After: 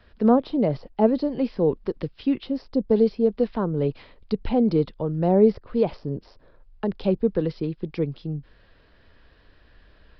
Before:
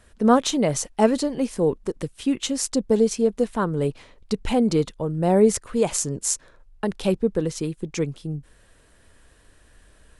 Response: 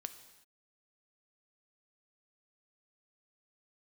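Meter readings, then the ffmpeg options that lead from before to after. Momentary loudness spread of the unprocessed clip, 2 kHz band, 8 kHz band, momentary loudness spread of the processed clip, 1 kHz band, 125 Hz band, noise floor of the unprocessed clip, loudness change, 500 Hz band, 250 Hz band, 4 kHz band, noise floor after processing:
11 LU, −8.5 dB, below −40 dB, 11 LU, −3.5 dB, 0.0 dB, −56 dBFS, −0.5 dB, −0.5 dB, 0.0 dB, −11.5 dB, −57 dBFS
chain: -filter_complex "[0:a]acrossover=split=300|880[link_01][link_02][link_03];[link_03]acompressor=threshold=-41dB:ratio=6[link_04];[link_01][link_02][link_04]amix=inputs=3:normalize=0,aresample=11025,aresample=44100"

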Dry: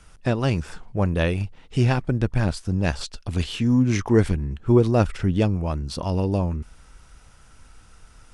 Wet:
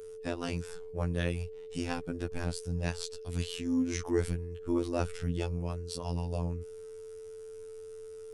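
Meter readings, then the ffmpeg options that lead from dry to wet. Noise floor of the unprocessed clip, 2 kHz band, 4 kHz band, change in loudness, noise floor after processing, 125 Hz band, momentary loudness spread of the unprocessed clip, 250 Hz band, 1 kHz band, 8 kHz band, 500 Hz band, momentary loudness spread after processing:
−51 dBFS, −10.5 dB, −8.0 dB, −11.5 dB, −45 dBFS, −13.5 dB, 9 LU, −11.5 dB, −11.5 dB, −4.0 dB, −10.0 dB, 15 LU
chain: -af "afftfilt=real='hypot(re,im)*cos(PI*b)':imag='0':win_size=2048:overlap=0.75,aemphasis=mode=production:type=50kf,aeval=exprs='val(0)+0.02*sin(2*PI*440*n/s)':channel_layout=same,volume=-8.5dB"

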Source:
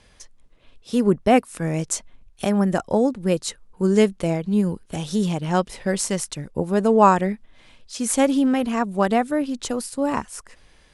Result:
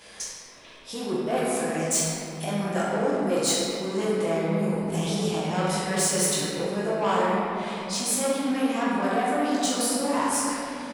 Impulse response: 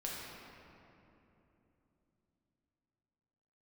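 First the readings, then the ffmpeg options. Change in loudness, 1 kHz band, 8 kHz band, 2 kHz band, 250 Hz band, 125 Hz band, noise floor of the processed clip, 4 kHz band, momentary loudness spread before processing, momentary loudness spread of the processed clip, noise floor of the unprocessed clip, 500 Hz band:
−4.0 dB, −4.0 dB, +3.5 dB, −0.5 dB, −6.0 dB, −5.0 dB, −47 dBFS, +4.0 dB, 10 LU, 8 LU, −54 dBFS, −4.0 dB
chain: -filter_complex "[0:a]areverse,acompressor=threshold=-28dB:ratio=5,areverse,agate=range=-33dB:threshold=-48dB:ratio=3:detection=peak,flanger=delay=18:depth=2.9:speed=2.8,asplit=2[link_01][link_02];[link_02]adelay=44,volume=-7dB[link_03];[link_01][link_03]amix=inputs=2:normalize=0,asplit=2[link_04][link_05];[link_05]acompressor=mode=upward:threshold=-35dB:ratio=2.5,volume=-3dB[link_06];[link_04][link_06]amix=inputs=2:normalize=0,asoftclip=type=tanh:threshold=-25.5dB,highpass=frequency=470:poles=1,highshelf=frequency=7100:gain=4[link_07];[1:a]atrim=start_sample=2205[link_08];[link_07][link_08]afir=irnorm=-1:irlink=0,volume=8.5dB"

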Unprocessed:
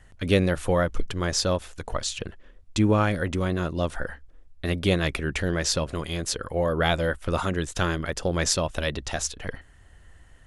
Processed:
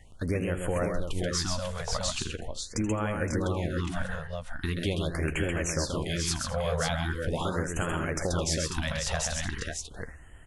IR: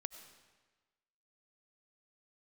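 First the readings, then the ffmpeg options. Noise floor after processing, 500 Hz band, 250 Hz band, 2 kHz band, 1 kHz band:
−46 dBFS, −5.5 dB, −5.0 dB, −4.0 dB, −5.0 dB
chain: -filter_complex "[0:a]asplit=2[link_01][link_02];[link_02]adelay=13,volume=-12.5dB[link_03];[link_01][link_03]amix=inputs=2:normalize=0,acompressor=threshold=-27dB:ratio=6,aecho=1:1:80|132|214|517|543:0.178|0.596|0.112|0.178|0.562,afftfilt=real='re*(1-between(b*sr/1024,290*pow(4800/290,0.5+0.5*sin(2*PI*0.41*pts/sr))/1.41,290*pow(4800/290,0.5+0.5*sin(2*PI*0.41*pts/sr))*1.41))':imag='im*(1-between(b*sr/1024,290*pow(4800/290,0.5+0.5*sin(2*PI*0.41*pts/sr))/1.41,290*pow(4800/290,0.5+0.5*sin(2*PI*0.41*pts/sr))*1.41))':win_size=1024:overlap=0.75"

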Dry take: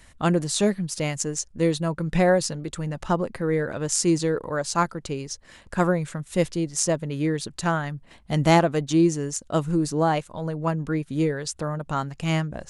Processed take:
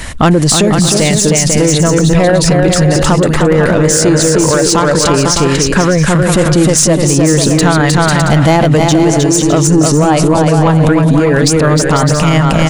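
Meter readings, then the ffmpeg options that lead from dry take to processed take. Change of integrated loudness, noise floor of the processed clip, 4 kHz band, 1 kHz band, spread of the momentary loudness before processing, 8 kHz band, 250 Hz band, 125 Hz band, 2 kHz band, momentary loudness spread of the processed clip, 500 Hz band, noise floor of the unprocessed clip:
+15.5 dB, −12 dBFS, +18.0 dB, +13.5 dB, 10 LU, +18.0 dB, +15.0 dB, +17.0 dB, +15.5 dB, 1 LU, +14.5 dB, −53 dBFS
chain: -af "highshelf=frequency=8900:gain=-2.5,acompressor=threshold=-26dB:ratio=10,asoftclip=type=tanh:threshold=-25dB,aecho=1:1:310|496|607.6|674.6|714.7:0.631|0.398|0.251|0.158|0.1,alimiter=level_in=29.5dB:limit=-1dB:release=50:level=0:latency=1,volume=-1dB"

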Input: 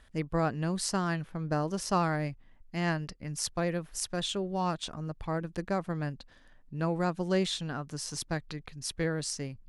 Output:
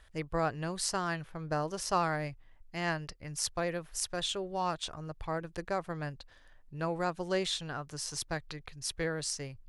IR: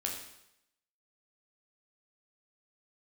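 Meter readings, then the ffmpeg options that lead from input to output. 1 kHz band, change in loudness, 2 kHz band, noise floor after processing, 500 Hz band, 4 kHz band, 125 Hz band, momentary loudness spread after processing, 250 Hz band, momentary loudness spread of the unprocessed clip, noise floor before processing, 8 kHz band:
−0.5 dB, −2.5 dB, 0.0 dB, −58 dBFS, −2.0 dB, 0.0 dB, −6.0 dB, 8 LU, −6.5 dB, 9 LU, −58 dBFS, 0.0 dB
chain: -af "equalizer=frequency=220:width_type=o:width=0.92:gain=-12"

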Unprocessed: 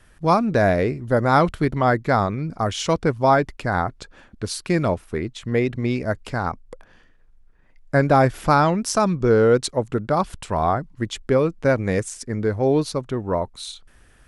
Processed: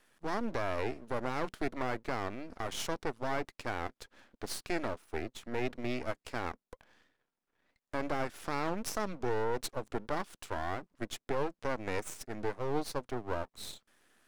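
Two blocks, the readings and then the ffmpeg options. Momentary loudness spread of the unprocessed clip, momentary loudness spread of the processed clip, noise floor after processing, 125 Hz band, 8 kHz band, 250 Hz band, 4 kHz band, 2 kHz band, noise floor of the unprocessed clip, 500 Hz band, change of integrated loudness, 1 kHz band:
11 LU, 7 LU, below −85 dBFS, −21.0 dB, −12.0 dB, −16.5 dB, −11.5 dB, −13.0 dB, −53 dBFS, −16.5 dB, −16.0 dB, −16.0 dB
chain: -af "highpass=frequency=220:width=0.5412,highpass=frequency=220:width=1.3066,alimiter=limit=-14dB:level=0:latency=1:release=82,aeval=exprs='max(val(0),0)':channel_layout=same,volume=-6dB"

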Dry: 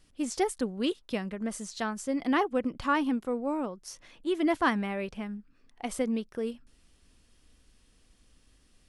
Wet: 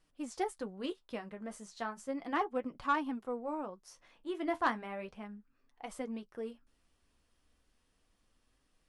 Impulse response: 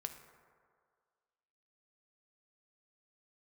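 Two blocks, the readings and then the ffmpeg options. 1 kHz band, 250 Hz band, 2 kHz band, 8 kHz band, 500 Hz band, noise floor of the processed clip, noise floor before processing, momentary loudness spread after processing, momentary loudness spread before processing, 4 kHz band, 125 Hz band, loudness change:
−4.0 dB, −10.5 dB, −6.5 dB, −12.5 dB, −7.5 dB, −75 dBFS, −64 dBFS, 14 LU, 12 LU, −10.0 dB, can't be measured, −7.5 dB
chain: -af "flanger=delay=6:depth=8.9:regen=-44:speed=0.34:shape=triangular,equalizer=frequency=920:width_type=o:width=2.1:gain=8,aeval=exprs='0.282*(cos(1*acos(clip(val(0)/0.282,-1,1)))-cos(1*PI/2))+0.0282*(cos(3*acos(clip(val(0)/0.282,-1,1)))-cos(3*PI/2))+0.0158*(cos(4*acos(clip(val(0)/0.282,-1,1)))-cos(4*PI/2))+0.00891*(cos(6*acos(clip(val(0)/0.282,-1,1)))-cos(6*PI/2))':channel_layout=same,volume=-5.5dB"

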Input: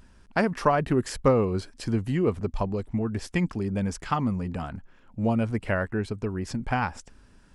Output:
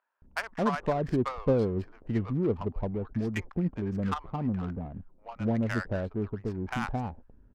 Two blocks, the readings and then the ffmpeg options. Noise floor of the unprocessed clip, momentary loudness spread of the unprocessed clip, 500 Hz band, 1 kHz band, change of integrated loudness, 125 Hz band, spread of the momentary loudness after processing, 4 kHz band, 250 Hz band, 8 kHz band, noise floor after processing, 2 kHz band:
−56 dBFS, 9 LU, −4.0 dB, −6.0 dB, −4.0 dB, −3.0 dB, 9 LU, −6.0 dB, −3.0 dB, below −10 dB, −60 dBFS, −5.0 dB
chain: -filter_complex "[0:a]acrossover=split=840[link_01][link_02];[link_01]adelay=220[link_03];[link_03][link_02]amix=inputs=2:normalize=0,adynamicsmooth=sensitivity=3.5:basefreq=770,volume=-3dB"

